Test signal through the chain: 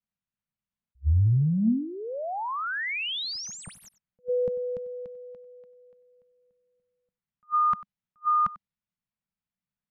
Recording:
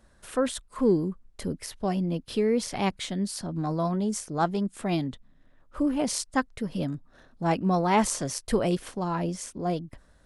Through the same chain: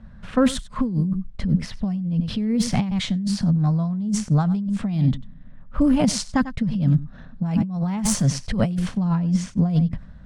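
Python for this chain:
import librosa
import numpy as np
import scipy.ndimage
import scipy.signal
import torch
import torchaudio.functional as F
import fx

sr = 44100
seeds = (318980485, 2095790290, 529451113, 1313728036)

y = scipy.signal.medfilt(x, 3)
y = fx.env_lowpass(y, sr, base_hz=2800.0, full_db=-20.5)
y = fx.low_shelf_res(y, sr, hz=260.0, db=9.5, q=3.0)
y = y + 10.0 ** (-18.5 / 20.0) * np.pad(y, (int(95 * sr / 1000.0), 0))[:len(y)]
y = fx.over_compress(y, sr, threshold_db=-22.0, ratio=-1.0)
y = fx.attack_slew(y, sr, db_per_s=570.0)
y = F.gain(torch.from_numpy(y), 1.5).numpy()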